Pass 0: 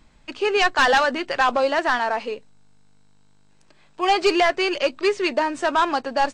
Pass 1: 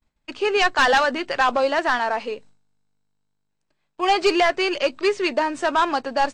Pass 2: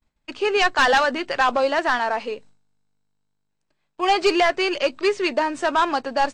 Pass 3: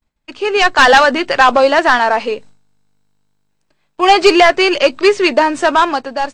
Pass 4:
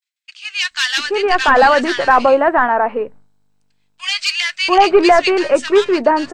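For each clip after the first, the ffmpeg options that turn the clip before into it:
ffmpeg -i in.wav -af "agate=range=-33dB:threshold=-41dB:ratio=3:detection=peak" out.wav
ffmpeg -i in.wav -af anull out.wav
ffmpeg -i in.wav -af "dynaudnorm=framelen=110:gausssize=11:maxgain=10dB,volume=1.5dB" out.wav
ffmpeg -i in.wav -filter_complex "[0:a]acrossover=split=1900[link_01][link_02];[link_01]adelay=690[link_03];[link_03][link_02]amix=inputs=2:normalize=0,volume=-1dB" out.wav

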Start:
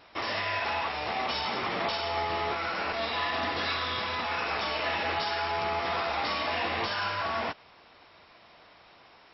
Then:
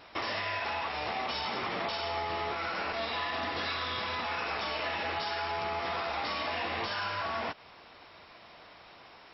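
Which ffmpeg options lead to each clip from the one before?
ffmpeg -i in.wav -af "acompressor=threshold=-35dB:ratio=3,volume=2.5dB" out.wav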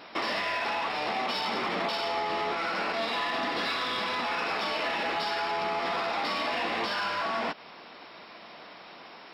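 ffmpeg -i in.wav -filter_complex "[0:a]lowshelf=frequency=130:width_type=q:width=1.5:gain=-13,asplit=2[link_01][link_02];[link_02]asoftclip=type=tanh:threshold=-38dB,volume=-4.5dB[link_03];[link_01][link_03]amix=inputs=2:normalize=0,volume=1.5dB" out.wav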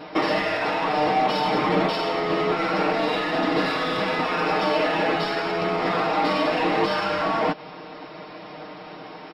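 ffmpeg -i in.wav -af "tiltshelf=frequency=930:gain=6.5,aecho=1:1:6.5:0.82,volume=6dB" out.wav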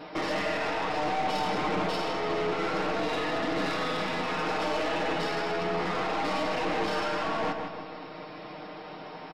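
ffmpeg -i in.wav -filter_complex "[0:a]aeval=exprs='(tanh(14.1*val(0)+0.25)-tanh(0.25))/14.1':channel_layout=same,asplit=2[link_01][link_02];[link_02]adelay=156,lowpass=frequency=3500:poles=1,volume=-5.5dB,asplit=2[link_03][link_04];[link_04]adelay=156,lowpass=frequency=3500:poles=1,volume=0.5,asplit=2[link_05][link_06];[link_06]adelay=156,lowpass=frequency=3500:poles=1,volume=0.5,asplit=2[link_07][link_08];[link_08]adelay=156,lowpass=frequency=3500:poles=1,volume=0.5,asplit=2[link_09][link_10];[link_10]adelay=156,lowpass=frequency=3500:poles=1,volume=0.5,asplit=2[link_11][link_12];[link_12]adelay=156,lowpass=frequency=3500:poles=1,volume=0.5[link_13];[link_01][link_03][link_05][link_07][link_09][link_11][link_13]amix=inputs=7:normalize=0,volume=-3.5dB" out.wav

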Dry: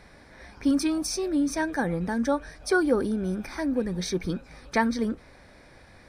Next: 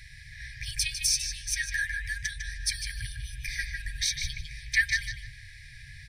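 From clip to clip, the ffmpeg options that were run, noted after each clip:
ffmpeg -i in.wav -filter_complex "[0:a]afftfilt=real='re*(1-between(b*sr/4096,150,1600))':imag='im*(1-between(b*sr/4096,150,1600))':win_size=4096:overlap=0.75,asplit=2[link_01][link_02];[link_02]adelay=152,lowpass=frequency=3500:poles=1,volume=-3.5dB,asplit=2[link_03][link_04];[link_04]adelay=152,lowpass=frequency=3500:poles=1,volume=0.27,asplit=2[link_05][link_06];[link_06]adelay=152,lowpass=frequency=3500:poles=1,volume=0.27,asplit=2[link_07][link_08];[link_08]adelay=152,lowpass=frequency=3500:poles=1,volume=0.27[link_09];[link_01][link_03][link_05][link_07][link_09]amix=inputs=5:normalize=0,volume=6.5dB" out.wav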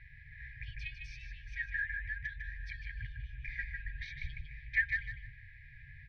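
ffmpeg -i in.wav -af "lowpass=frequency=2400:width=0.5412,lowpass=frequency=2400:width=1.3066,volume=-5.5dB" out.wav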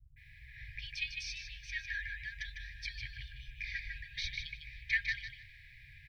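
ffmpeg -i in.wav -filter_complex "[0:a]adynamicequalizer=threshold=0.00126:dfrequency=4700:dqfactor=1.1:tfrequency=4700:tqfactor=1.1:attack=5:release=100:ratio=0.375:range=3.5:mode=boostabove:tftype=bell,acrossover=split=170[link_01][link_02];[link_02]adelay=160[link_03];[link_01][link_03]amix=inputs=2:normalize=0,aexciter=amount=4.1:drive=6.3:freq=2400,volume=-4.5dB" out.wav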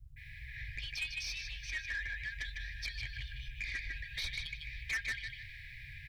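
ffmpeg -i in.wav -filter_complex "[0:a]asplit=2[link_01][link_02];[link_02]acompressor=threshold=-48dB:ratio=6,volume=2dB[link_03];[link_01][link_03]amix=inputs=2:normalize=0,asoftclip=type=tanh:threshold=-31dB" out.wav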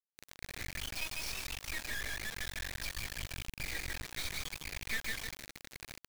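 ffmpeg -i in.wav -af "acrusher=bits=4:dc=4:mix=0:aa=0.000001,volume=3dB" out.wav

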